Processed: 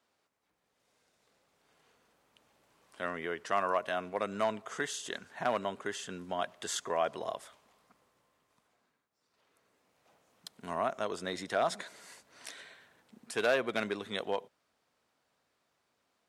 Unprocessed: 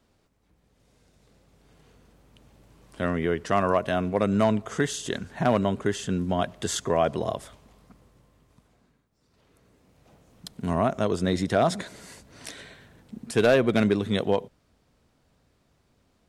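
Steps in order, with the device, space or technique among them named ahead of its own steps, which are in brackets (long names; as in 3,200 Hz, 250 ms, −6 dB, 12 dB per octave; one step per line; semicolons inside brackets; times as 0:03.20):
filter by subtraction (in parallel: low-pass filter 1,100 Hz 12 dB per octave + polarity inversion)
on the sum: level −6.5 dB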